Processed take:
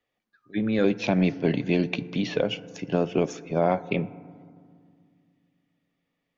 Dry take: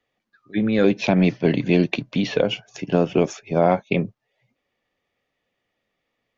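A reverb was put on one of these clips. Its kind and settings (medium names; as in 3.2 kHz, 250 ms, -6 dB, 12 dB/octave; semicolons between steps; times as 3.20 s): FDN reverb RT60 2.1 s, low-frequency decay 1.5×, high-frequency decay 0.3×, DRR 16 dB; trim -5 dB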